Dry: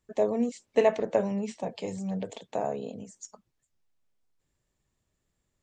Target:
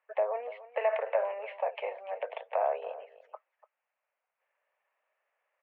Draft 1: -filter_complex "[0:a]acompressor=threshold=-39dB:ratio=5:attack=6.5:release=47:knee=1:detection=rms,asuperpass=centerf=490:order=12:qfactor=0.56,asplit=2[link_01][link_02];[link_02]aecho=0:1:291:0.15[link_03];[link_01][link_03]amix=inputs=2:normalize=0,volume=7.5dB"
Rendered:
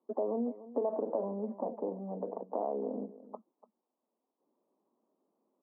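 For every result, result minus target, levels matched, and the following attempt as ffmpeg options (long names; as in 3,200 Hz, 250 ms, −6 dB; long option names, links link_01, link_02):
downward compressor: peak gain reduction +7 dB; 1,000 Hz band −4.0 dB
-filter_complex "[0:a]acompressor=threshold=-30dB:ratio=5:attack=6.5:release=47:knee=1:detection=rms,asuperpass=centerf=490:order=12:qfactor=0.56,asplit=2[link_01][link_02];[link_02]aecho=0:1:291:0.15[link_03];[link_01][link_03]amix=inputs=2:normalize=0,volume=7.5dB"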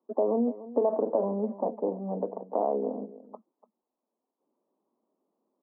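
1,000 Hz band −4.0 dB
-filter_complex "[0:a]acompressor=threshold=-30dB:ratio=5:attack=6.5:release=47:knee=1:detection=rms,asuperpass=centerf=1200:order=12:qfactor=0.56,asplit=2[link_01][link_02];[link_02]aecho=0:1:291:0.15[link_03];[link_01][link_03]amix=inputs=2:normalize=0,volume=7.5dB"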